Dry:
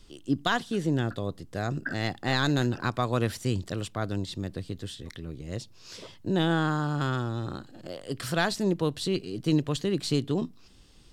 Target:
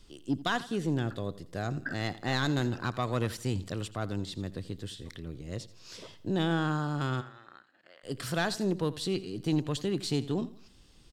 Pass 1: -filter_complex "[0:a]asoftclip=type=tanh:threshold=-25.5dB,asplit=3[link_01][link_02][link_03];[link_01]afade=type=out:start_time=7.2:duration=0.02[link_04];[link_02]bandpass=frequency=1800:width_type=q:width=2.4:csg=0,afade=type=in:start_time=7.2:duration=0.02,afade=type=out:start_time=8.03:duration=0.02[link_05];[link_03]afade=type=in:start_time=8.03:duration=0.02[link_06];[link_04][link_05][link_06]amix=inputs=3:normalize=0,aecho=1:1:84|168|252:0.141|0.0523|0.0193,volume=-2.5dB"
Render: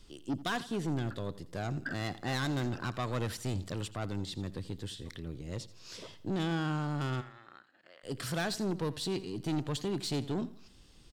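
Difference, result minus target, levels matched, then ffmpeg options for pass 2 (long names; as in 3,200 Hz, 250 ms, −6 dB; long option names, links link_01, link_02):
soft clipping: distortion +11 dB
-filter_complex "[0:a]asoftclip=type=tanh:threshold=-16dB,asplit=3[link_01][link_02][link_03];[link_01]afade=type=out:start_time=7.2:duration=0.02[link_04];[link_02]bandpass=frequency=1800:width_type=q:width=2.4:csg=0,afade=type=in:start_time=7.2:duration=0.02,afade=type=out:start_time=8.03:duration=0.02[link_05];[link_03]afade=type=in:start_time=8.03:duration=0.02[link_06];[link_04][link_05][link_06]amix=inputs=3:normalize=0,aecho=1:1:84|168|252:0.141|0.0523|0.0193,volume=-2.5dB"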